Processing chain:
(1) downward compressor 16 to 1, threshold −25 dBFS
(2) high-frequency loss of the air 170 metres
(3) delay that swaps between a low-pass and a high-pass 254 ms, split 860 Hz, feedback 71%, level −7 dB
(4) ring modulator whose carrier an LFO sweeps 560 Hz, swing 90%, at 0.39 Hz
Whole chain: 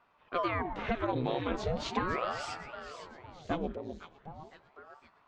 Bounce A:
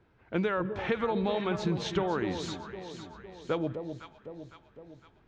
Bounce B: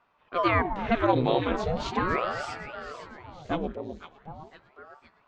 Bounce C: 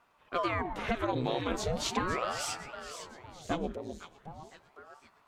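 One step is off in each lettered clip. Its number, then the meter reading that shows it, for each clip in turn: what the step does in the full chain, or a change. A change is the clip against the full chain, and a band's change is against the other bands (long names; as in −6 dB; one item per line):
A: 4, change in momentary loudness spread −1 LU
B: 1, average gain reduction 4.5 dB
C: 2, 8 kHz band +12.0 dB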